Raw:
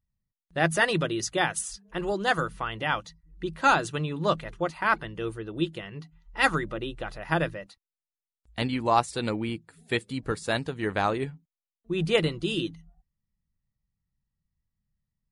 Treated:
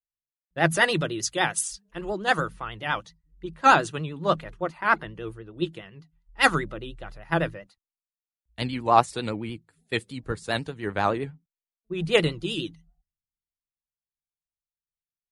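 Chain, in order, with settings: vibrato 10 Hz 65 cents; three bands expanded up and down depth 70%

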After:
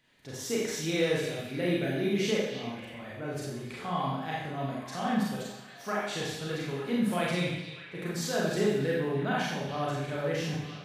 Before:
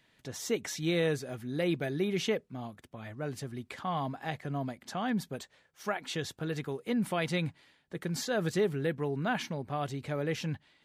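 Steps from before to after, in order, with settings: on a send: repeats whose band climbs or falls 298 ms, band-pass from 3.4 kHz, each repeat -0.7 oct, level -8 dB; on the sum: Schroeder reverb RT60 0.85 s, combs from 30 ms, DRR -5 dB; trim -3.5 dB

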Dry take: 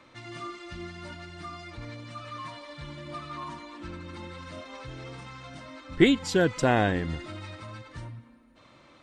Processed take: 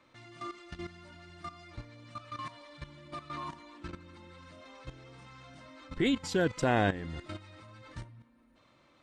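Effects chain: level held to a coarse grid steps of 13 dB

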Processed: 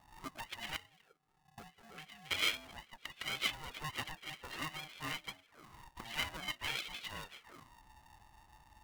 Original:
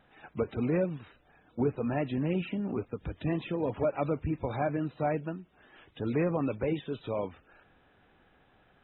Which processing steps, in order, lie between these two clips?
0.76–2.31 s: vowel filter u; auto-wah 360–2800 Hz, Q 7.7, up, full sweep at -35.5 dBFS; polarity switched at an audio rate 460 Hz; trim +15.5 dB

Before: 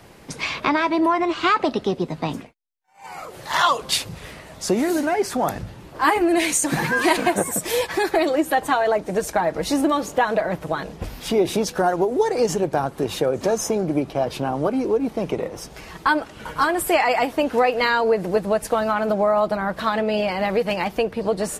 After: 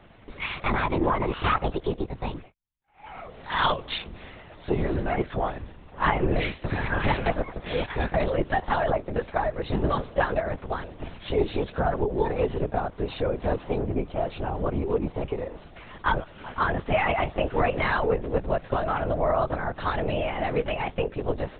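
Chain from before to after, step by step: LPC vocoder at 8 kHz whisper; trim -5 dB

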